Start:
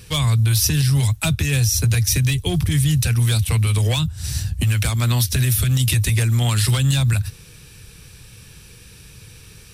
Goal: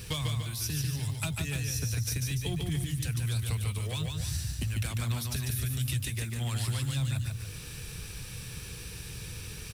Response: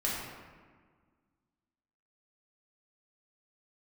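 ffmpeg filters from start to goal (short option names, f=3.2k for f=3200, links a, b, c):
-filter_complex "[0:a]acompressor=threshold=-31dB:ratio=10,acrusher=bits=9:mix=0:aa=0.000001,asplit=2[a][b];[b]aecho=0:1:145.8|291.5:0.631|0.316[c];[a][c]amix=inputs=2:normalize=0"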